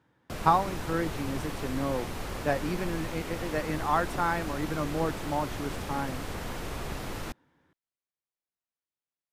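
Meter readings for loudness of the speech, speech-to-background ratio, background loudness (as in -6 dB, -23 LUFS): -31.5 LUFS, 6.0 dB, -37.5 LUFS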